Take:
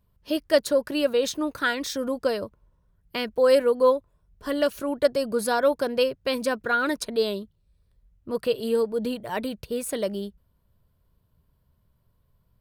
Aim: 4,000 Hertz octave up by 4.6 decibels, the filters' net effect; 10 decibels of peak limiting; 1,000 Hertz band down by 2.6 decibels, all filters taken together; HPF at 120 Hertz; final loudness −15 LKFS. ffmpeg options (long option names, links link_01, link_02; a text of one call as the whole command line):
ffmpeg -i in.wav -af "highpass=120,equalizer=frequency=1000:width_type=o:gain=-4,equalizer=frequency=4000:width_type=o:gain=6,volume=13dB,alimiter=limit=-3.5dB:level=0:latency=1" out.wav